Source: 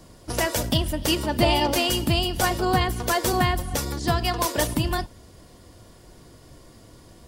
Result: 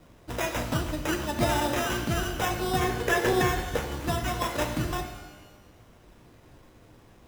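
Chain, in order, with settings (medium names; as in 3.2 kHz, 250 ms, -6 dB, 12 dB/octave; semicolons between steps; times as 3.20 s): sample-and-hold 10×; 2.82–3.77 s: small resonant body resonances 440/1700 Hz, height 11 dB, ringing for 20 ms; pitch-shifted reverb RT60 1 s, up +12 st, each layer -8 dB, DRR 5.5 dB; trim -6.5 dB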